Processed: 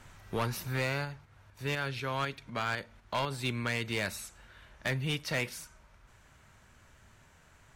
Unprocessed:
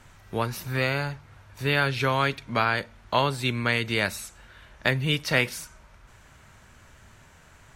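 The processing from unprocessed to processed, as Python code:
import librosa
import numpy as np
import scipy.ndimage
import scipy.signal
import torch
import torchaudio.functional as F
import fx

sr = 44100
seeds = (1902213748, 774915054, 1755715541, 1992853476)

y = fx.rider(x, sr, range_db=4, speed_s=0.5)
y = fx.tremolo_shape(y, sr, shape='saw_up', hz=4.0, depth_pct=50, at=(1.04, 3.3), fade=0.02)
y = np.clip(10.0 ** (19.5 / 20.0) * y, -1.0, 1.0) / 10.0 ** (19.5 / 20.0)
y = F.gain(torch.from_numpy(y), -5.5).numpy()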